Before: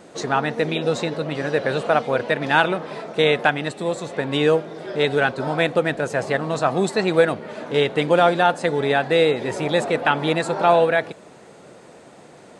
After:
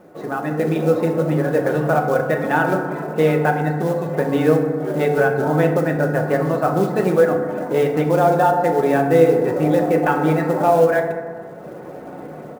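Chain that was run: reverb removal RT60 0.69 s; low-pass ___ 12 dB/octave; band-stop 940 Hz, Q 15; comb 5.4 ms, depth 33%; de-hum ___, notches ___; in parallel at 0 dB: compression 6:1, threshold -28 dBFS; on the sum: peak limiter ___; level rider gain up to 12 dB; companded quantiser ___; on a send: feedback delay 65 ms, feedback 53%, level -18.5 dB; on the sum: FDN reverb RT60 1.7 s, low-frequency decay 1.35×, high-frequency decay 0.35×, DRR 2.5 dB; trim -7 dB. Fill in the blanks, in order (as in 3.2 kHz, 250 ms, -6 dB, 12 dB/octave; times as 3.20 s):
1.3 kHz, 147.2 Hz, 2, -8 dBFS, 6-bit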